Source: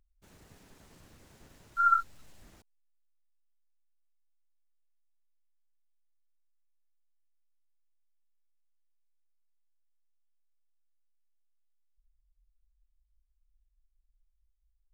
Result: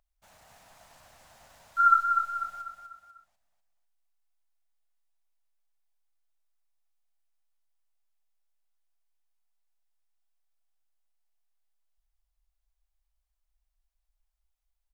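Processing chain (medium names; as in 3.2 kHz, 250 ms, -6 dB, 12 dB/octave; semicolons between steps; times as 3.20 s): resonant low shelf 510 Hz -10 dB, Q 3; on a send: feedback delay 247 ms, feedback 43%, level -6 dB; on the sum: trim +2.5 dB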